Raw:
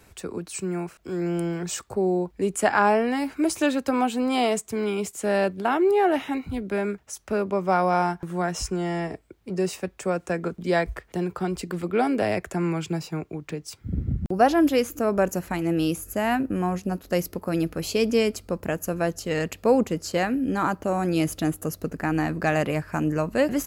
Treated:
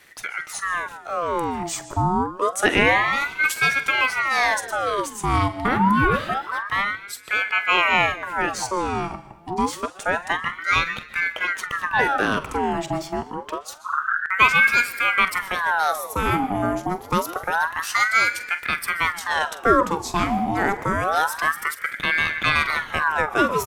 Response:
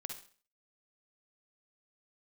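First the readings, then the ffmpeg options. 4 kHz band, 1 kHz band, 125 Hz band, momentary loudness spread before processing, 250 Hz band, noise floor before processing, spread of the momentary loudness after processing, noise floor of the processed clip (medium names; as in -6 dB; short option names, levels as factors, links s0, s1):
+7.5 dB, +6.0 dB, -1.5 dB, 9 LU, -4.0 dB, -57 dBFS, 10 LU, -41 dBFS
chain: -filter_complex "[0:a]asplit=2[s0][s1];[s1]adelay=225,lowpass=f=3400:p=1,volume=0.0841,asplit=2[s2][s3];[s3]adelay=225,lowpass=f=3400:p=1,volume=0.43,asplit=2[s4][s5];[s5]adelay=225,lowpass=f=3400:p=1,volume=0.43[s6];[s0][s2][s4][s6]amix=inputs=4:normalize=0,asplit=2[s7][s8];[1:a]atrim=start_sample=2205,asetrate=27342,aresample=44100,adelay=45[s9];[s8][s9]afir=irnorm=-1:irlink=0,volume=0.237[s10];[s7][s10]amix=inputs=2:normalize=0,aeval=exprs='val(0)*sin(2*PI*1200*n/s+1200*0.6/0.27*sin(2*PI*0.27*n/s))':c=same,volume=1.78"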